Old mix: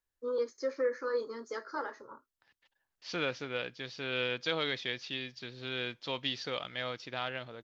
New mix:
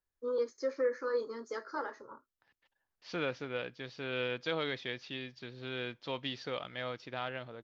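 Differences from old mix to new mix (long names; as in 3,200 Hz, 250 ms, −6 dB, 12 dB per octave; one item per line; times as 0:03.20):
first voice: add high-shelf EQ 4,100 Hz +8.5 dB
master: add high-shelf EQ 2,700 Hz −9 dB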